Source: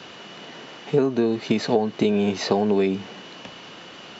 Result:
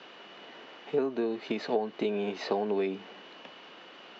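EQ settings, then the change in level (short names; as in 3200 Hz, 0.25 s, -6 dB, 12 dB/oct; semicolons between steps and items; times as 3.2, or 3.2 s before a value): BPF 290–3600 Hz; -7.0 dB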